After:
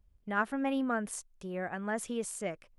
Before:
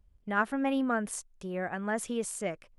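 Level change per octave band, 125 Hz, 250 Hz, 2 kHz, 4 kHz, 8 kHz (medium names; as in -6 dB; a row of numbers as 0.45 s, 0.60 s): -2.5 dB, -2.5 dB, -2.5 dB, -2.5 dB, -2.5 dB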